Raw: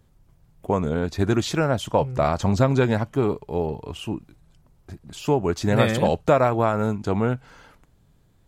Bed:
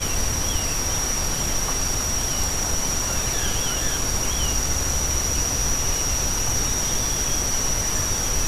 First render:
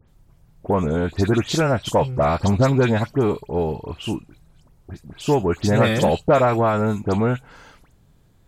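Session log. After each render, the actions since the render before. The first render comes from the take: phase dispersion highs, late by 84 ms, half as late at 2.7 kHz; in parallel at -6.5 dB: saturation -17.5 dBFS, distortion -13 dB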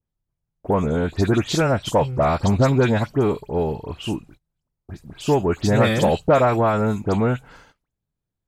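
gate -44 dBFS, range -27 dB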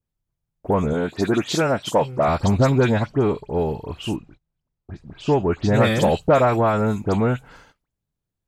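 0.93–2.28 s: high-pass 170 Hz; 2.96–3.49 s: distance through air 62 m; 4.16–5.74 s: distance through air 120 m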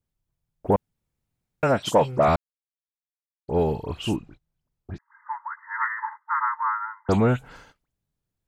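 0.76–1.63 s: room tone; 2.36–3.48 s: mute; 4.98–7.09 s: brick-wall FIR band-pass 860–2100 Hz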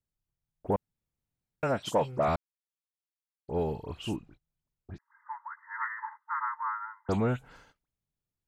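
trim -8 dB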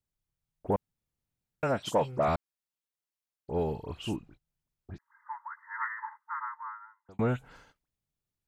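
5.93–7.19 s: fade out

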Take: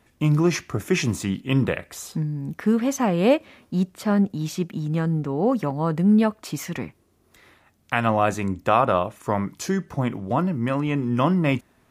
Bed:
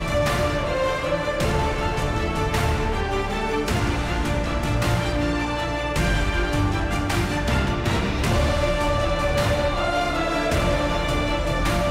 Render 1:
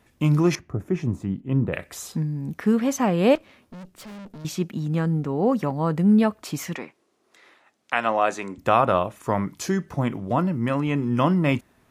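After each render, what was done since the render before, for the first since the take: 0.55–1.73 s: FFT filter 120 Hz 0 dB, 770 Hz -6 dB, 3.5 kHz -21 dB; 3.35–4.45 s: valve stage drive 38 dB, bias 0.75; 6.75–8.58 s: band-pass 360–7900 Hz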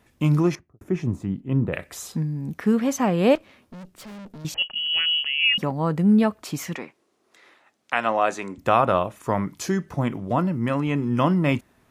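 0.37–0.81 s: studio fade out; 4.54–5.58 s: frequency inversion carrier 3.1 kHz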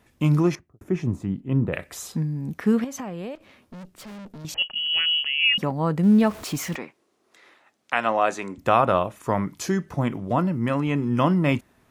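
2.84–4.49 s: compression 20:1, threshold -29 dBFS; 6.03–6.76 s: jump at every zero crossing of -35.5 dBFS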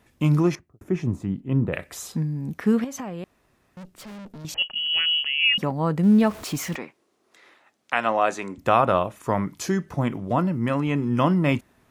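3.24–3.77 s: room tone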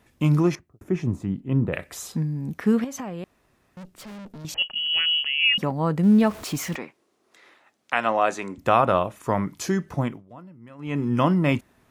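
10.00–11.01 s: dip -21.5 dB, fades 0.23 s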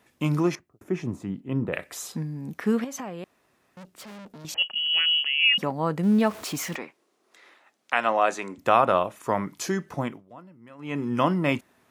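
high-pass 270 Hz 6 dB/octave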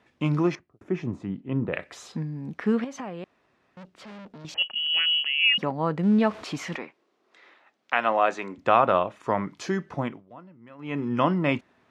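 low-pass 4.1 kHz 12 dB/octave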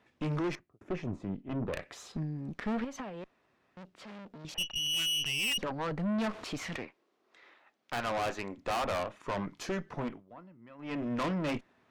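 valve stage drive 29 dB, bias 0.75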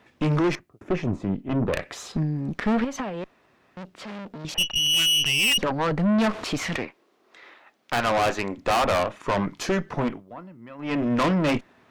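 trim +10.5 dB

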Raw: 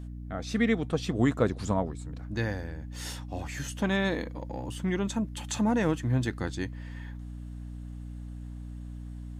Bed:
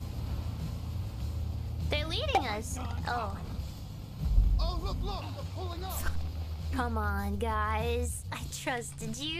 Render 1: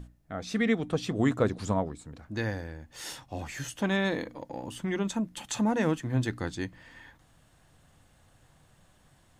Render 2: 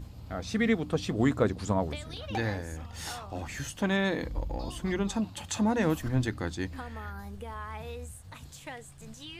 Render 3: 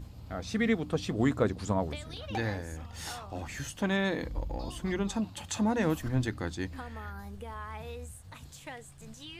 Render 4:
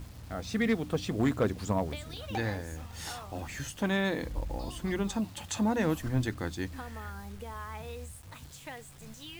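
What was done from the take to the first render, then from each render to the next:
hum notches 60/120/180/240/300 Hz
add bed -9 dB
trim -1.5 dB
hard clipper -19.5 dBFS, distortion -24 dB; bit crusher 9-bit

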